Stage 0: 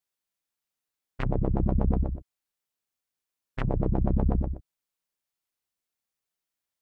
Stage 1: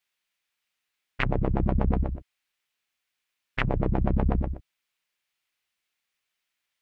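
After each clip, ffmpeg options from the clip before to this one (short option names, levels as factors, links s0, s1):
-af "equalizer=f=2400:w=0.66:g=13.5"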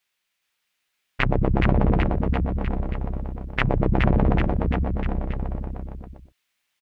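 -af "aecho=1:1:420|798|1138|1444|1720:0.631|0.398|0.251|0.158|0.1,volume=1.68"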